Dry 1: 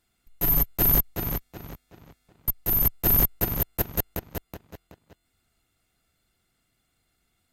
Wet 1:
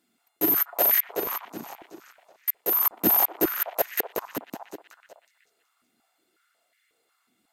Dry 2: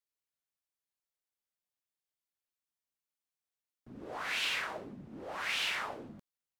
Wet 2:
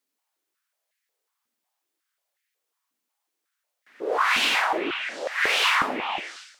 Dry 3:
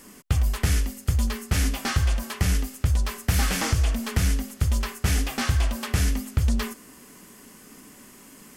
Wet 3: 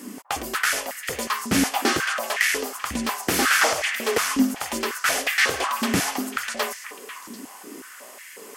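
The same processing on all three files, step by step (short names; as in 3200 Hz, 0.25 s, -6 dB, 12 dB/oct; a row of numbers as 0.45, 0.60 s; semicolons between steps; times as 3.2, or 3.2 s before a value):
delay with a stepping band-pass 0.247 s, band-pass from 900 Hz, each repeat 1.4 oct, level -7 dB; stepped high-pass 5.5 Hz 250–1900 Hz; match loudness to -23 LUFS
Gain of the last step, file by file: +0.5, +10.5, +5.0 dB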